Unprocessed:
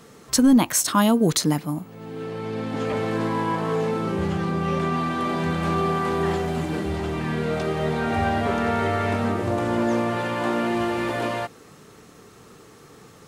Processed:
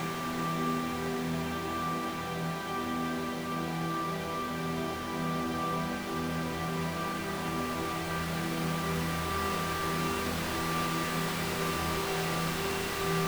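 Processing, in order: wrapped overs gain 15.5 dB; Paulstretch 14×, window 1.00 s, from 4.96; gain -8.5 dB

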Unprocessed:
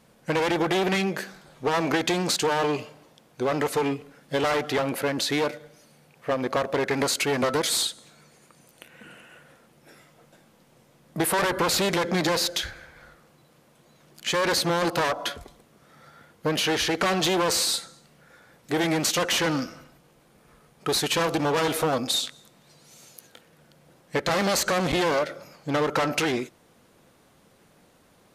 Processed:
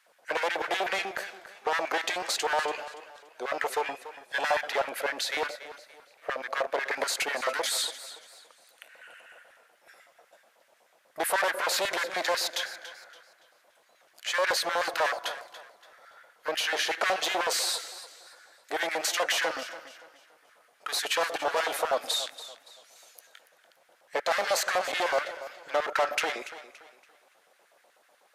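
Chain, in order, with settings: LFO high-pass square 8.1 Hz 640–1600 Hz; 3.87–4.64 comb 1.2 ms, depth 54%; warbling echo 0.285 s, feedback 34%, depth 60 cents, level -14.5 dB; gain -5 dB

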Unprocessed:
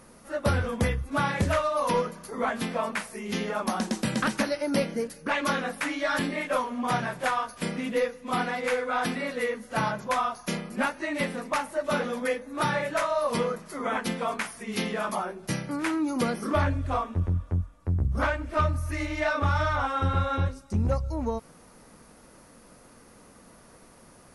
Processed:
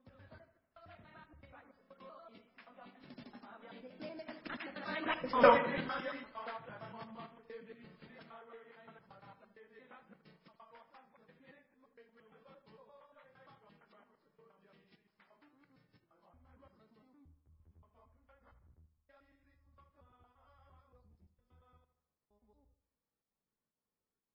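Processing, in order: slices in reverse order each 0.105 s, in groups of 8; Doppler pass-by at 5.41, 32 m/s, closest 1.8 m; in parallel at +3 dB: pump 124 bpm, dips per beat 1, -23 dB, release 0.137 s; on the sum: dark delay 77 ms, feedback 48%, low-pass 3000 Hz, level -12.5 dB; MP3 16 kbps 12000 Hz

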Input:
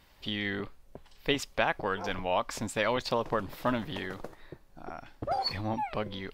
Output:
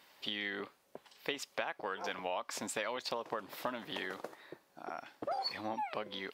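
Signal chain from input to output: HPF 210 Hz 12 dB/oct; low shelf 270 Hz -9 dB; compressor 6:1, threshold -35 dBFS, peak gain reduction 12 dB; gain +1 dB

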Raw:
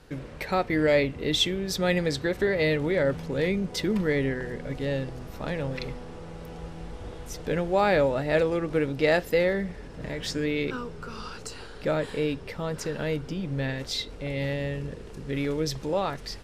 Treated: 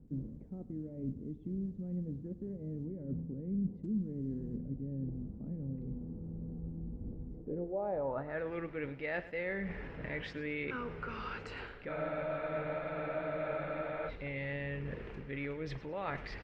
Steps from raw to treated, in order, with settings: reverse; compressor 8:1, threshold -34 dBFS, peak gain reduction 16.5 dB; reverse; low-pass sweep 230 Hz -> 2200 Hz, 7.28–8.55; feedback echo 0.107 s, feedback 32%, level -16 dB; spectral freeze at 11.91, 2.18 s; gain -3 dB; Opus 48 kbps 48000 Hz

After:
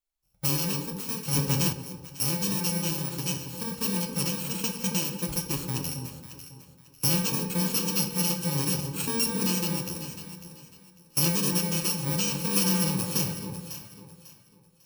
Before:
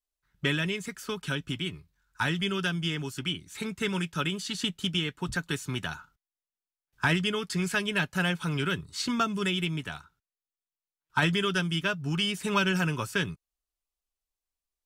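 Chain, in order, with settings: FFT order left unsorted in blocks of 64 samples; bell 1800 Hz -3.5 dB 0.56 oct; echo with dull and thin repeats by turns 0.274 s, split 980 Hz, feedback 53%, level -6 dB; shoebox room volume 320 m³, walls mixed, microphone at 0.6 m; 1.33–1.73 sample leveller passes 2

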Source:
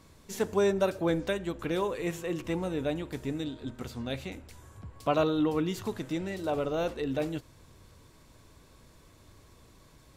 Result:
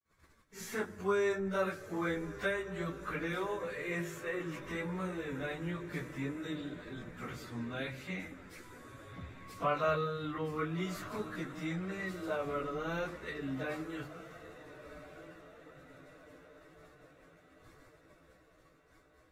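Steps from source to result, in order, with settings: gate -54 dBFS, range -56 dB; notches 50/100/150/200/250/300/350 Hz; in parallel at -1.5 dB: compressor 16:1, threshold -37 dBFS, peak gain reduction 16.5 dB; on the sum: band shelf 1600 Hz +9.5 dB 1.2 oct; on a send: diffused feedback echo 0.702 s, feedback 55%, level -14 dB; on the sum: dynamic EQ 170 Hz, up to +5 dB, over -47 dBFS, Q 4; plain phase-vocoder stretch 1.9×; gain -7 dB

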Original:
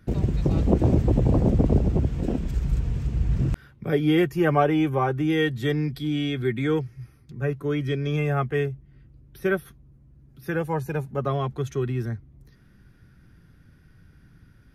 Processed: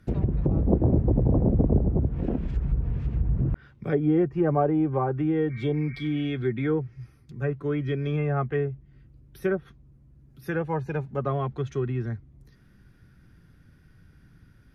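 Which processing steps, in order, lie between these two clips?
spectral repair 5.52–6.23, 1100–2400 Hz after; treble ducked by the level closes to 870 Hz, closed at -18 dBFS; gain -1.5 dB

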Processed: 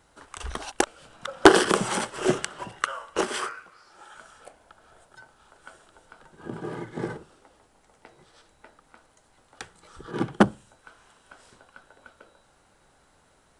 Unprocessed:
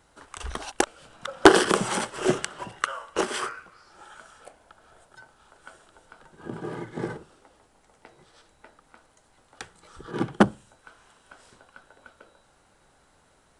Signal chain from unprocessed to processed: 3.41–4.15 low shelf 190 Hz -8.5 dB

